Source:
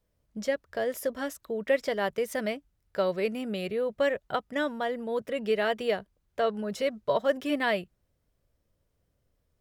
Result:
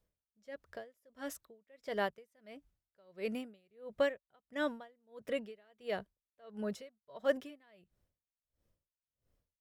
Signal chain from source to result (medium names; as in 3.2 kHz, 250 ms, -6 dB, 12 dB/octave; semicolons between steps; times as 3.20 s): logarithmic tremolo 1.5 Hz, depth 36 dB; trim -3.5 dB